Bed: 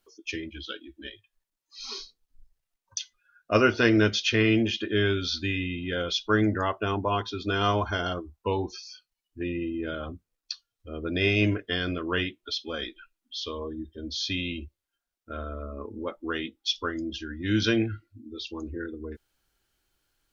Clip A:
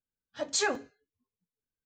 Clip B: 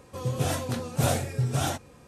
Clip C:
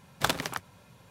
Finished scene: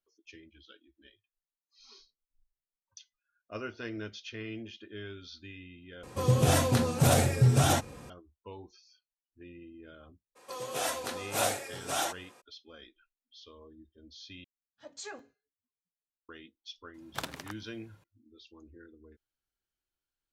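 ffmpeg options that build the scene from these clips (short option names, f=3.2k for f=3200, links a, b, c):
-filter_complex "[2:a]asplit=2[a][b];[0:a]volume=-18.5dB[c];[a]alimiter=level_in=17.5dB:limit=-1dB:release=50:level=0:latency=1[d];[b]highpass=560[e];[c]asplit=3[f][g][h];[f]atrim=end=6.034[i];[d]atrim=end=2.07,asetpts=PTS-STARTPTS,volume=-12.5dB[j];[g]atrim=start=8.096:end=14.444[k];[1:a]atrim=end=1.85,asetpts=PTS-STARTPTS,volume=-15dB[l];[h]atrim=start=16.286[m];[e]atrim=end=2.07,asetpts=PTS-STARTPTS,afade=t=in:d=0.02,afade=t=out:st=2.05:d=0.02,adelay=10350[n];[3:a]atrim=end=1.1,asetpts=PTS-STARTPTS,volume=-10.5dB,afade=t=in:d=0.004:c=hsin,afade=t=out:st=1.096:d=0.004:c=hsin,adelay=16940[o];[i][j]acrossfade=d=0.004:c1=hsin:c2=hsin[p];[p][k]acrossfade=d=0.004:c1=hsin:c2=hsin[q];[q][l]acrossfade=d=0.004:c1=hsin:c2=hsin[r];[r][m]acrossfade=d=0.004:c1=hsin:c2=hsin[s];[s][n][o]amix=inputs=3:normalize=0"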